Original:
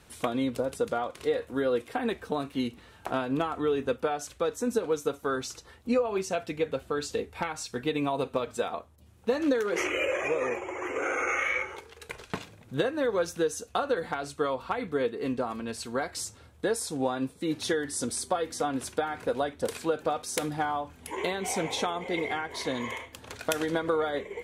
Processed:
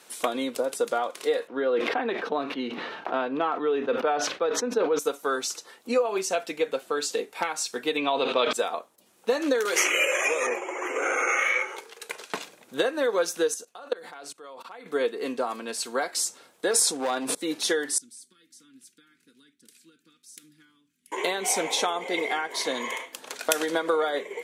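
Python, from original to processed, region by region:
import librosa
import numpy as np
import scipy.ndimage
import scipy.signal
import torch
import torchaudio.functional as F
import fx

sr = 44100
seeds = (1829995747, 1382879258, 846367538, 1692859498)

y = fx.chain(x, sr, fx.air_absorb(metres=280.0),
    fx.sustainer(db_per_s=39.0), at=(1.47, 4.99))
y = fx.chain(y, sr, fx.lowpass_res(hz=3400.0, q=2.2),
    fx.sustainer(db_per_s=23.0), at=(7.97, 8.53))
y = fx.chain(y, sr, fx.tilt_eq(slope=2.5),
    fx.band_squash(depth_pct=40), at=(9.65, 10.47))
y = fx.chain(y, sr, fx.peak_eq(hz=85.0, db=4.5, octaves=0.26),
    fx.level_steps(step_db=23), at=(13.54, 14.86))
y = fx.chain(y, sr, fx.lowpass(hz=11000.0, slope=12),
    fx.clip_hard(threshold_db=-26.0),
    fx.sustainer(db_per_s=23.0), at=(16.71, 17.35))
y = fx.chain(y, sr, fx.cheby1_bandstop(low_hz=290.0, high_hz=1500.0, order=2),
    fx.tone_stack(knobs='10-0-1'), at=(17.98, 21.12))
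y = scipy.signal.sosfilt(scipy.signal.butter(4, 170.0, 'highpass', fs=sr, output='sos'), y)
y = fx.bass_treble(y, sr, bass_db=-14, treble_db=5)
y = y * librosa.db_to_amplitude(4.0)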